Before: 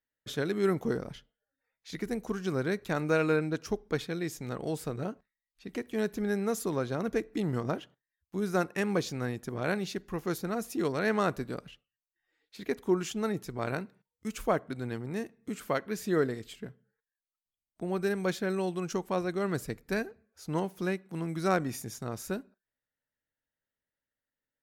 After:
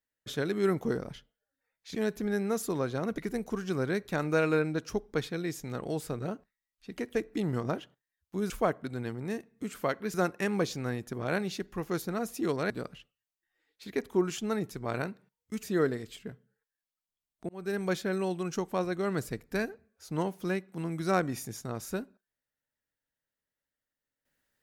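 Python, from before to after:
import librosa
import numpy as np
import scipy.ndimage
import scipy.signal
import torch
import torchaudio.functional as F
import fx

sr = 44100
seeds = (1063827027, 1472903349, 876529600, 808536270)

y = fx.edit(x, sr, fx.move(start_s=5.92, length_s=1.23, to_s=1.95),
    fx.cut(start_s=11.06, length_s=0.37),
    fx.move(start_s=14.36, length_s=1.64, to_s=8.5),
    fx.fade_in_span(start_s=17.86, length_s=0.31), tone=tone)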